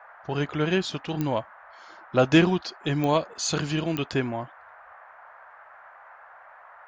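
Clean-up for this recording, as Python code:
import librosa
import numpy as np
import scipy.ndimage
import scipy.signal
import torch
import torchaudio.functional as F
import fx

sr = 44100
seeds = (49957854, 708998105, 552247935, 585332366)

y = fx.fix_declick_ar(x, sr, threshold=10.0)
y = fx.noise_reduce(y, sr, print_start_s=6.15, print_end_s=6.65, reduce_db=22.0)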